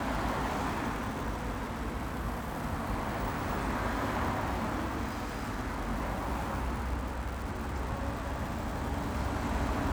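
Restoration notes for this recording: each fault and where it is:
crackle 230 per s -38 dBFS

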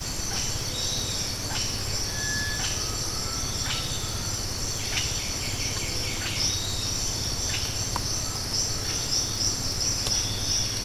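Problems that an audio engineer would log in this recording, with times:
crackle 43 per s -31 dBFS

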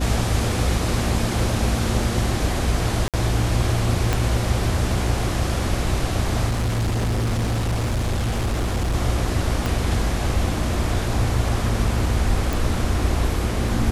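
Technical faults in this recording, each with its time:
hum 60 Hz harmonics 6 -26 dBFS
3.08–3.14 s: dropout 57 ms
4.13 s: pop
6.48–8.95 s: clipped -18.5 dBFS
9.66 s: pop
12.53 s: pop

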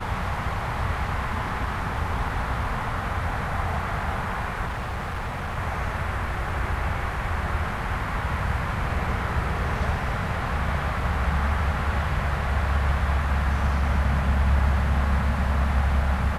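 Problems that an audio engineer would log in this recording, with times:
4.66–5.58 s: clipped -26 dBFS

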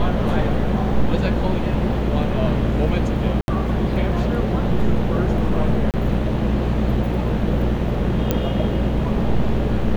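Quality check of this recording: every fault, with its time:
buzz 60 Hz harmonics 35 -24 dBFS
3.41–3.48 s: dropout 71 ms
5.91–5.94 s: dropout 28 ms
8.31 s: pop -5 dBFS

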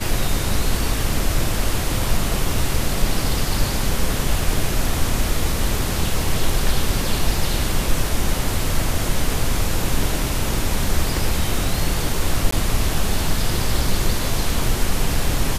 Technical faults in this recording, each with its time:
12.51–12.52 s: dropout 14 ms

